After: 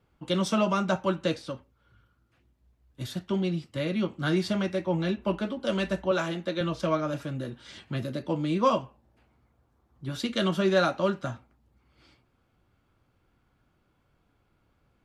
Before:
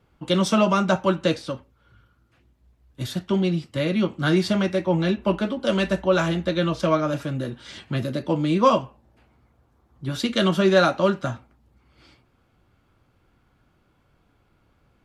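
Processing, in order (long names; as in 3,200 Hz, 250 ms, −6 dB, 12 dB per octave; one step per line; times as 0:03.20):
0:06.11–0:06.61: high-pass filter 200 Hz 12 dB per octave
level −6 dB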